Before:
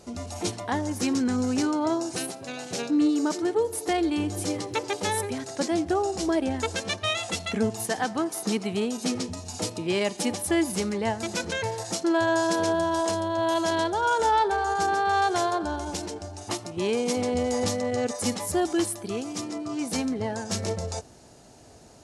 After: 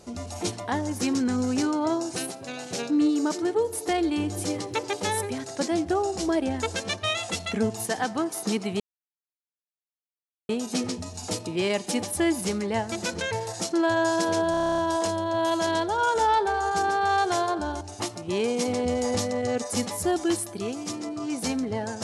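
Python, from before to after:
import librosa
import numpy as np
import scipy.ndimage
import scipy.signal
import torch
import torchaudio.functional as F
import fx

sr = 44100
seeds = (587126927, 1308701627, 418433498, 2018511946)

y = fx.edit(x, sr, fx.insert_silence(at_s=8.8, length_s=1.69),
    fx.stutter(start_s=12.82, slice_s=0.03, count=10),
    fx.cut(start_s=15.85, length_s=0.45), tone=tone)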